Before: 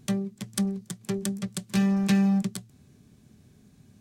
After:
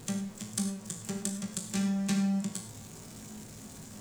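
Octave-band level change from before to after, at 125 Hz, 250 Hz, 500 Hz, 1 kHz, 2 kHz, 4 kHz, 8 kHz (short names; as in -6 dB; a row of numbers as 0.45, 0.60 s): -6.5, -6.5, -9.0, -6.0, -6.5, -3.0, +2.0 dB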